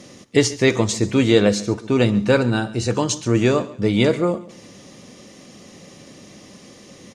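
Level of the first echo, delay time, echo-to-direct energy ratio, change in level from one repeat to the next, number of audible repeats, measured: −19.0 dB, 137 ms, −18.5 dB, −10.5 dB, 2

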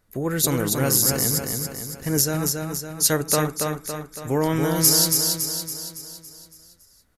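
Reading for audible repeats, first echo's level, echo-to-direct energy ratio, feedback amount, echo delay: 6, −4.0 dB, −2.5 dB, 52%, 280 ms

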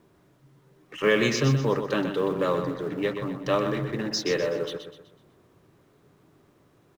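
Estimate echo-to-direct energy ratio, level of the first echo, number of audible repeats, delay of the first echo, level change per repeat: −7.0 dB, −8.0 dB, 4, 125 ms, −8.0 dB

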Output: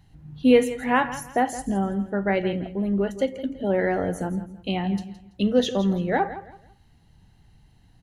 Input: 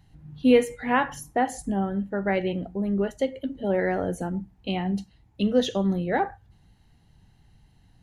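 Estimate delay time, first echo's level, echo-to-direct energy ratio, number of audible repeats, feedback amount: 166 ms, −14.0 dB, −13.5 dB, 2, 28%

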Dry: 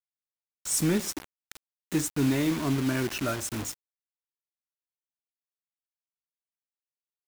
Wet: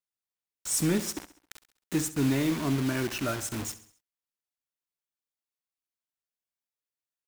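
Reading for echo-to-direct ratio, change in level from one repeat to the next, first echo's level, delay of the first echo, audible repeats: −14.5 dB, −6.0 dB, −15.5 dB, 67 ms, 4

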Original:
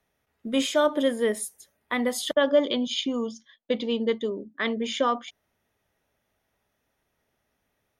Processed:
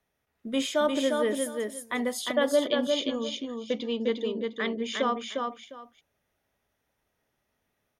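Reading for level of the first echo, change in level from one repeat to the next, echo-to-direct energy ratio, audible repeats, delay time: −4.0 dB, −13.5 dB, −4.0 dB, 2, 353 ms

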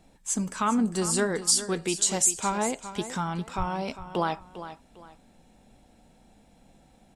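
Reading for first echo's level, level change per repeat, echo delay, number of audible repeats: −12.5 dB, −10.0 dB, 402 ms, 2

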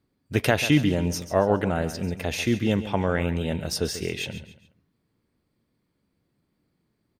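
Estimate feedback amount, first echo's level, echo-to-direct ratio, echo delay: 35%, −13.0 dB, −12.5 dB, 139 ms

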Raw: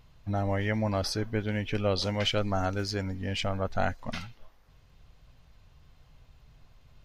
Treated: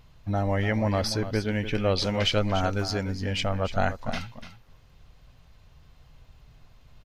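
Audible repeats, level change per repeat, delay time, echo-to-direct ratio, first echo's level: 1, repeats not evenly spaced, 293 ms, −11.5 dB, −11.5 dB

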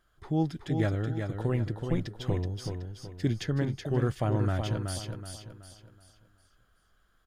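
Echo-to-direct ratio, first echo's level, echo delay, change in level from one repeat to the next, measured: −5.5 dB, −6.0 dB, 375 ms, −8.5 dB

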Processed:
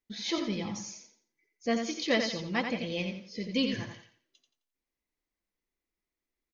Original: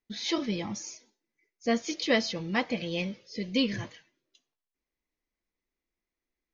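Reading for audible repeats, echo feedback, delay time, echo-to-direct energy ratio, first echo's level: 3, 28%, 87 ms, −6.0 dB, −6.5 dB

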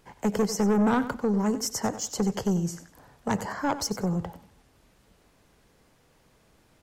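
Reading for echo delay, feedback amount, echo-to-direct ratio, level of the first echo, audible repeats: 94 ms, 25%, −13.0 dB, −13.5 dB, 2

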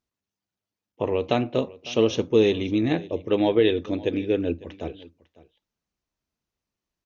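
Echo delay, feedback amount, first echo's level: 551 ms, repeats not evenly spaced, −20.5 dB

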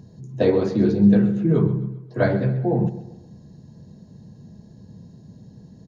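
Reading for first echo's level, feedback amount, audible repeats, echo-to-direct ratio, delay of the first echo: −14.5 dB, 43%, 3, −13.5 dB, 131 ms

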